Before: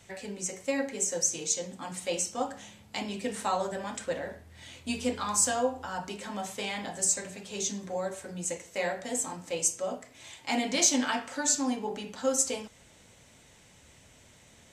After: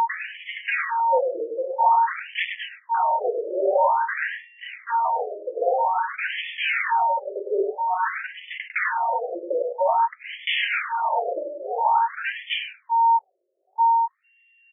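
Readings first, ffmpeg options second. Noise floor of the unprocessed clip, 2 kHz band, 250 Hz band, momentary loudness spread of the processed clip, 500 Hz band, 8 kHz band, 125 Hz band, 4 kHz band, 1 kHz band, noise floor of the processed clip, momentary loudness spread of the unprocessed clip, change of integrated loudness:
-58 dBFS, +12.0 dB, -9.0 dB, 10 LU, +8.0 dB, under -40 dB, under -25 dB, +4.0 dB, +17.0 dB, -64 dBFS, 12 LU, +7.0 dB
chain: -filter_complex "[0:a]aemphasis=mode=production:type=cd,bandreject=f=54.78:t=h:w=4,bandreject=f=109.56:t=h:w=4,bandreject=f=164.34:t=h:w=4,bandreject=f=219.12:t=h:w=4,bandreject=f=273.9:t=h:w=4,bandreject=f=328.68:t=h:w=4,bandreject=f=383.46:t=h:w=4,anlmdn=0.0631,equalizer=f=88:t=o:w=2:g=-6.5,acompressor=threshold=0.0447:ratio=10,aresample=8000,aresample=44100,aeval=exprs='val(0)+0.0112*sin(2*PI*920*n/s)':c=same,aphaser=in_gain=1:out_gain=1:delay=3.2:decay=0.2:speed=0.18:type=triangular,aresample=11025,aeval=exprs='0.158*sin(PI/2*6.31*val(0)/0.158)':c=same,aresample=44100,tremolo=f=1.6:d=0.47,asplit=2[s0][s1];[s1]adelay=102,lowpass=f=2100:p=1,volume=0.631,asplit=2[s2][s3];[s3]adelay=102,lowpass=f=2100:p=1,volume=0.17,asplit=2[s4][s5];[s5]adelay=102,lowpass=f=2100:p=1,volume=0.17[s6];[s0][s2][s4][s6]amix=inputs=4:normalize=0,afftfilt=real='re*between(b*sr/1024,450*pow(2500/450,0.5+0.5*sin(2*PI*0.5*pts/sr))/1.41,450*pow(2500/450,0.5+0.5*sin(2*PI*0.5*pts/sr))*1.41)':imag='im*between(b*sr/1024,450*pow(2500/450,0.5+0.5*sin(2*PI*0.5*pts/sr))/1.41,450*pow(2500/450,0.5+0.5*sin(2*PI*0.5*pts/sr))*1.41)':win_size=1024:overlap=0.75,volume=1.33"

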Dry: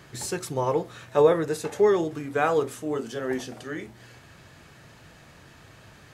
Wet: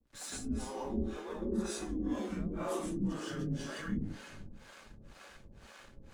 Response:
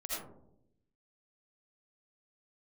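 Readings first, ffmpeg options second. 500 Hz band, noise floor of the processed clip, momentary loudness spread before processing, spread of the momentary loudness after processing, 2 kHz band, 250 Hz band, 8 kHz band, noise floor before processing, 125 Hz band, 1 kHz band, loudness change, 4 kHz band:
-18.0 dB, -57 dBFS, 15 LU, 19 LU, -12.5 dB, -3.5 dB, -7.0 dB, -52 dBFS, -4.5 dB, -15.5 dB, -12.0 dB, -7.0 dB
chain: -filter_complex "[0:a]areverse,acompressor=threshold=0.0282:ratio=10,areverse[s0];[1:a]atrim=start_sample=2205,asetrate=22491,aresample=44100[s1];[s0][s1]afir=irnorm=-1:irlink=0,aeval=exprs='sgn(val(0))*max(abs(val(0))-0.00299,0)':c=same,acrossover=split=510[s2][s3];[s2]aeval=exprs='val(0)*(1-1/2+1/2*cos(2*PI*2*n/s))':c=same[s4];[s3]aeval=exprs='val(0)*(1-1/2-1/2*cos(2*PI*2*n/s))':c=same[s5];[s4][s5]amix=inputs=2:normalize=0,afreqshift=-110,volume=0.668"

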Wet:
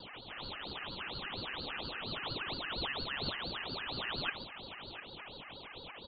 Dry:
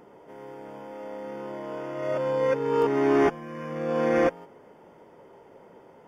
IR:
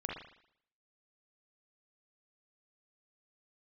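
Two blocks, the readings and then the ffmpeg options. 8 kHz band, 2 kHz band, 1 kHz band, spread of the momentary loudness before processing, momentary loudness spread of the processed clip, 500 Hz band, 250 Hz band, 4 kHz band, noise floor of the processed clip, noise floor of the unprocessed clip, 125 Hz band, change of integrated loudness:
no reading, -3.0 dB, -11.5 dB, 20 LU, 11 LU, -22.5 dB, -18.0 dB, +11.5 dB, -50 dBFS, -53 dBFS, -8.5 dB, -13.5 dB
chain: -af "lowshelf=f=140:g=11.5,areverse,acompressor=threshold=0.0178:ratio=6,areverse,aeval=exprs='val(0)+0.00501*sin(2*PI*950*n/s)':c=same,acrusher=samples=19:mix=1:aa=0.000001,flanger=delay=0.5:depth=8.3:regen=30:speed=1.6:shape=sinusoidal,aecho=1:1:702:0.237,lowpass=f=2200:t=q:w=0.5098,lowpass=f=2200:t=q:w=0.6013,lowpass=f=2200:t=q:w=0.9,lowpass=f=2200:t=q:w=2.563,afreqshift=-2600,aeval=exprs='val(0)*sin(2*PI*1300*n/s+1300*0.7/4.3*sin(2*PI*4.3*n/s))':c=same,volume=1.58"

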